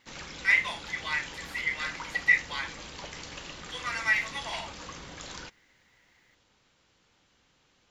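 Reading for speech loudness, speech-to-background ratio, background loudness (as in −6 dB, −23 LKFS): −28.5 LKFS, 13.0 dB, −41.5 LKFS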